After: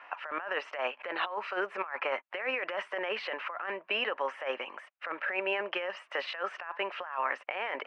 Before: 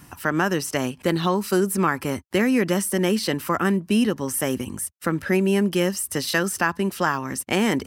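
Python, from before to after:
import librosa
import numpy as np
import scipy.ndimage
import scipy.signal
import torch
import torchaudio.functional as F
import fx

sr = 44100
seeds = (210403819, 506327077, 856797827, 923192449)

y = scipy.signal.sosfilt(scipy.signal.ellip(3, 1.0, 70, [580.0, 2600.0], 'bandpass', fs=sr, output='sos'), x)
y = fx.over_compress(y, sr, threshold_db=-34.0, ratio=-1.0)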